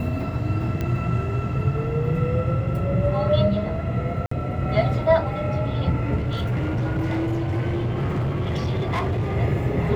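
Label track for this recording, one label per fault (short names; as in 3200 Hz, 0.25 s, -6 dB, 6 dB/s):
0.810000	0.810000	pop -15 dBFS
4.260000	4.310000	gap 54 ms
6.160000	9.360000	clipped -20.5 dBFS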